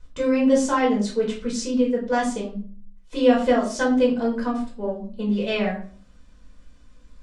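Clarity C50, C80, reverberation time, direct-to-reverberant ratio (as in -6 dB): 7.5 dB, 12.5 dB, 0.45 s, -4.0 dB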